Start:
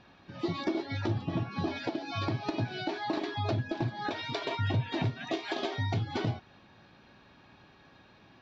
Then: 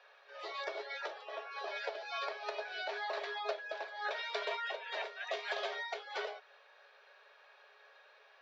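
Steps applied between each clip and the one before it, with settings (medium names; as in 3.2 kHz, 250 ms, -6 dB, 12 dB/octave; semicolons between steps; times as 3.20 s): rippled Chebyshev high-pass 410 Hz, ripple 6 dB; trim +1 dB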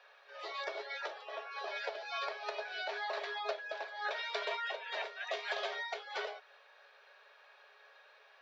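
bass shelf 300 Hz -6 dB; trim +1 dB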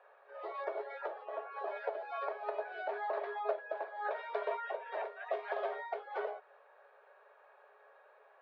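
low-pass 1 kHz 12 dB/octave; trim +4.5 dB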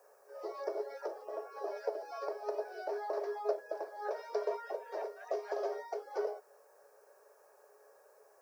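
FFT filter 240 Hz 0 dB, 450 Hz -4 dB, 680 Hz -11 dB, 2.4 kHz -18 dB, 3.6 kHz -18 dB, 5.3 kHz +14 dB; trim +9 dB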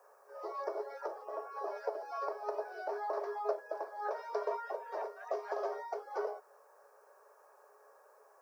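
peaking EQ 1.1 kHz +10 dB 1.1 oct; trim -3.5 dB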